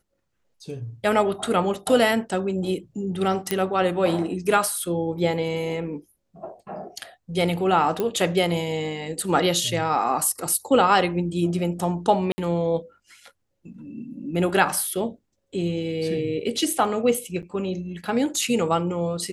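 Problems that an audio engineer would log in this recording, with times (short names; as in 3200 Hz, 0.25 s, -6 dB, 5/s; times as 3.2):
3.51 pop -6 dBFS
8 pop -12 dBFS
12.32–12.38 gap 60 ms
17.42–17.43 gap 8.2 ms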